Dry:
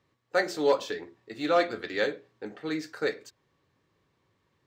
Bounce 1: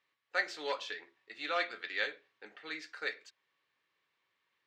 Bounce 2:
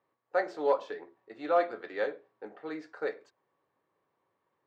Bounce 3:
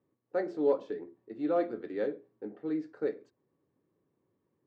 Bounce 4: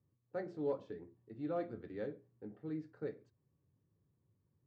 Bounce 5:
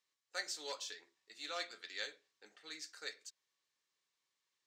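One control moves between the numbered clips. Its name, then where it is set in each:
resonant band-pass, frequency: 2,500, 780, 300, 110, 7,000 Hertz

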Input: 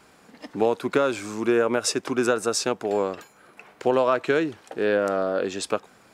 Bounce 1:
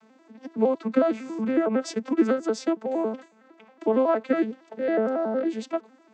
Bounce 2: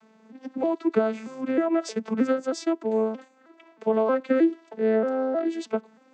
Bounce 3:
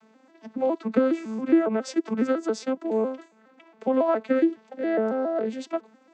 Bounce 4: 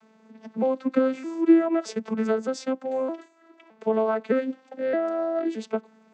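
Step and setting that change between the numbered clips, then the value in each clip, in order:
vocoder with an arpeggio as carrier, a note every: 92, 314, 138, 616 milliseconds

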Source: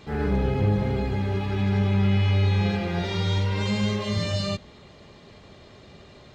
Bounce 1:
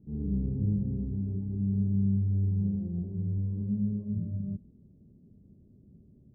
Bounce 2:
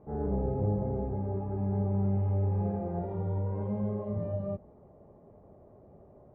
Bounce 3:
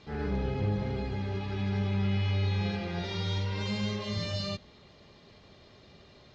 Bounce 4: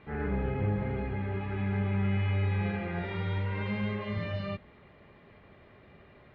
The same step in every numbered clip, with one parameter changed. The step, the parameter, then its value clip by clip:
transistor ladder low-pass, frequency: 290, 880, 6,600, 2,600 Hertz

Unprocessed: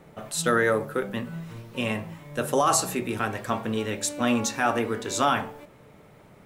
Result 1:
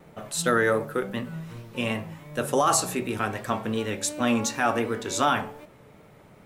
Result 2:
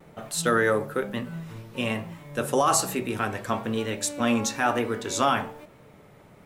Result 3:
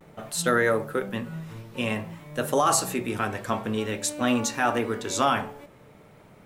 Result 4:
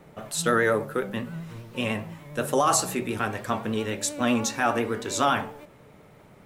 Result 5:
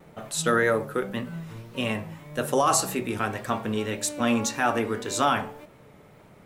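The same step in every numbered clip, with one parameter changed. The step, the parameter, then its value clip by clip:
pitch vibrato, speed: 2.7, 1.1, 0.51, 10, 1.8 Hertz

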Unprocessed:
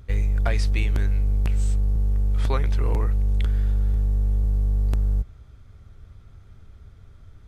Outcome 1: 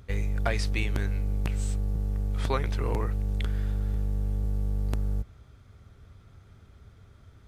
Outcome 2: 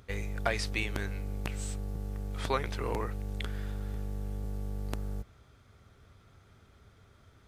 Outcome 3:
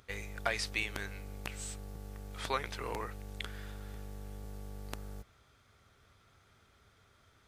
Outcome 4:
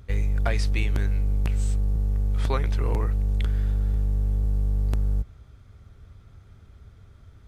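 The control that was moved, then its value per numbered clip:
high-pass filter, corner frequency: 110, 330, 990, 44 Hertz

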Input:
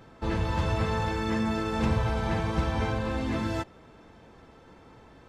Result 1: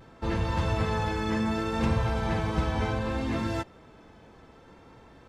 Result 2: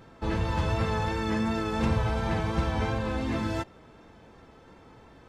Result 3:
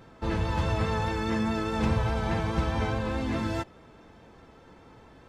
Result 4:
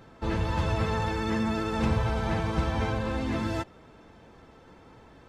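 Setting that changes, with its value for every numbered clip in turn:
pitch vibrato, speed: 0.66, 2.8, 4.8, 15 Hertz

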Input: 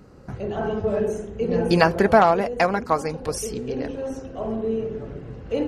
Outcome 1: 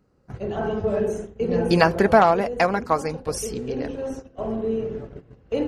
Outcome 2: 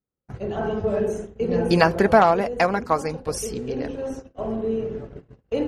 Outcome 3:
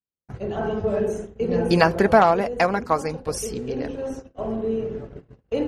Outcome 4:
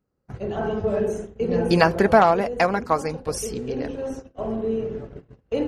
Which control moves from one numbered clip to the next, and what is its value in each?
noise gate, range: −16, −42, −54, −29 decibels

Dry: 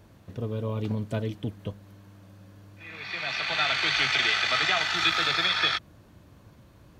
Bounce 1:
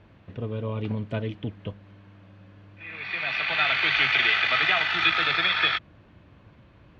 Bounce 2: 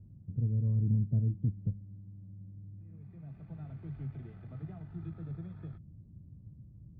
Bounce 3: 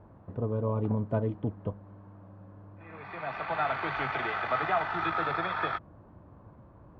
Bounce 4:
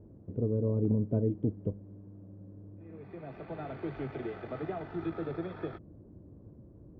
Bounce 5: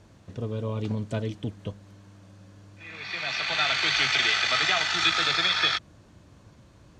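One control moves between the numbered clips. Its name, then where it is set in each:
low-pass with resonance, frequency: 2,700, 150, 1,000, 390, 7,400 Hertz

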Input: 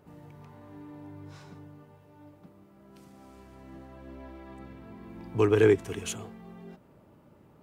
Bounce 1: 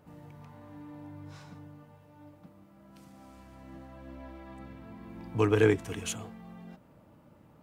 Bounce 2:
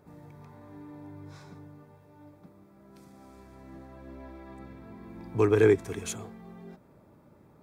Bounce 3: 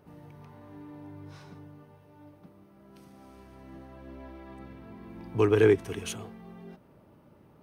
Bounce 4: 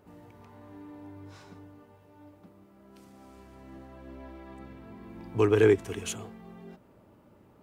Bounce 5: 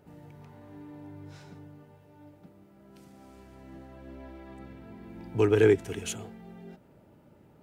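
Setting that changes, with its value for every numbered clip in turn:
notch filter, centre frequency: 390, 2,900, 7,300, 150, 1,100 Hertz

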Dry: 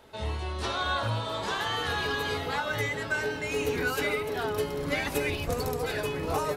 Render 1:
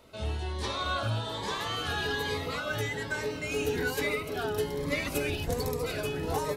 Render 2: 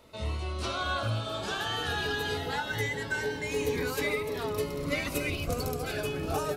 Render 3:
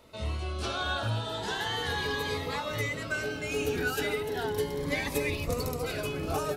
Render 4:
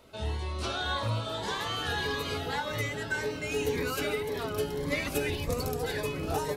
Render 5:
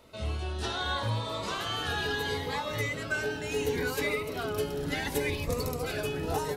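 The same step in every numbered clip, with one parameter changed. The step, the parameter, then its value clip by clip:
phaser whose notches keep moving one way, speed: 1.2, 0.21, 0.36, 1.8, 0.71 Hertz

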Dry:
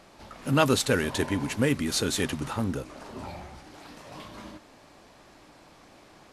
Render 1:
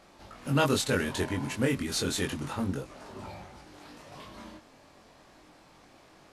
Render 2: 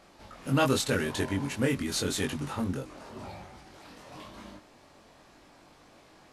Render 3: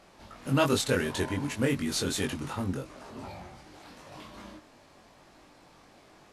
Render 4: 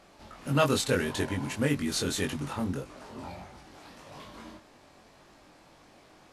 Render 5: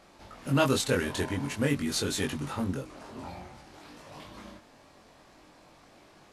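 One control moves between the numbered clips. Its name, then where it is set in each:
chorus effect, speed: 0.28, 0.87, 2.7, 1.7, 0.48 Hertz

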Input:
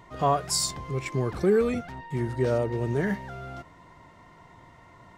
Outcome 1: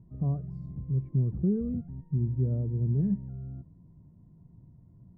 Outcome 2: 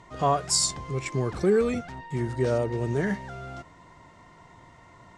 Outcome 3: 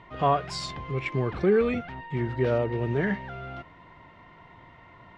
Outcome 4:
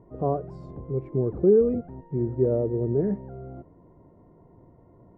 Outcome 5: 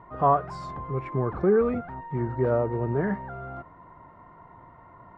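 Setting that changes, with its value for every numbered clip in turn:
low-pass with resonance, frequency: 170, 8,000, 2,900, 440, 1,200 Hertz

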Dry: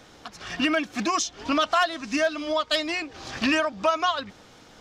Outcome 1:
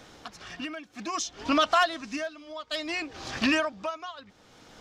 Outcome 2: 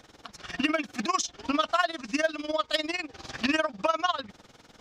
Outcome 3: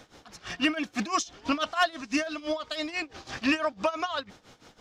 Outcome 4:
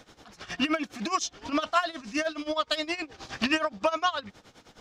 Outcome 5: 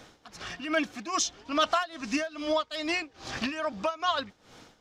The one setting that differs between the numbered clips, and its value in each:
amplitude tremolo, speed: 0.61, 20, 6, 9.6, 2.4 Hertz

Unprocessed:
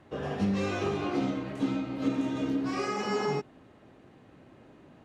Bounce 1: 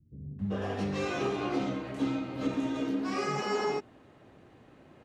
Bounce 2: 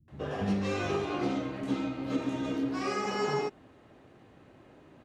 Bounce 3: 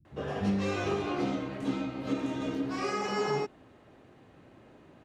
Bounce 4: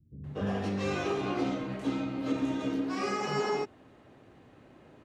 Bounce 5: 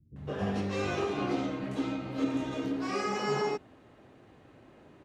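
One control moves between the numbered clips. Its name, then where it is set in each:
multiband delay without the direct sound, delay time: 390, 80, 50, 240, 160 milliseconds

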